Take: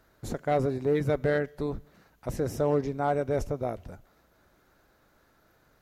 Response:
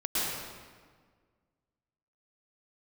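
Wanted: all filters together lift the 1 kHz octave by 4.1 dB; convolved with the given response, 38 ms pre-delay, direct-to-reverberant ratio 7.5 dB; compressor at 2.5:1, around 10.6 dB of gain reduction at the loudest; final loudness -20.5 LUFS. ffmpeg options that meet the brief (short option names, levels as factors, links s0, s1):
-filter_complex "[0:a]equalizer=f=1000:t=o:g=6.5,acompressor=threshold=0.0158:ratio=2.5,asplit=2[s0][s1];[1:a]atrim=start_sample=2205,adelay=38[s2];[s1][s2]afir=irnorm=-1:irlink=0,volume=0.141[s3];[s0][s3]amix=inputs=2:normalize=0,volume=6.68"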